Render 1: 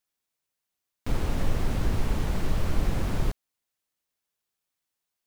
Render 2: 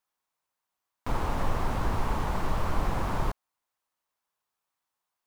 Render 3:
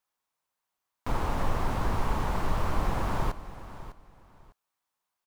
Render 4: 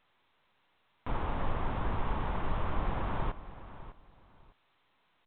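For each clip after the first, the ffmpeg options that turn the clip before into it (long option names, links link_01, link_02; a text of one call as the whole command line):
ffmpeg -i in.wav -af "equalizer=frequency=990:width=1.1:gain=13,volume=-3.5dB" out.wav
ffmpeg -i in.wav -af "aecho=1:1:603|1206:0.188|0.0433" out.wav
ffmpeg -i in.wav -af "volume=-4.5dB" -ar 8000 -c:a pcm_alaw out.wav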